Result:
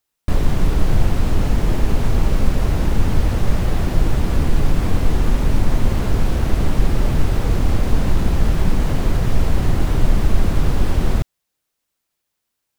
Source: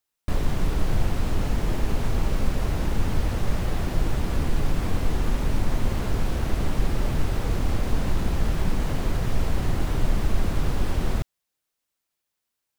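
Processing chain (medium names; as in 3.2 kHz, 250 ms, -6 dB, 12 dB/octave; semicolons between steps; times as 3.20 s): bass shelf 440 Hz +3 dB; trim +4.5 dB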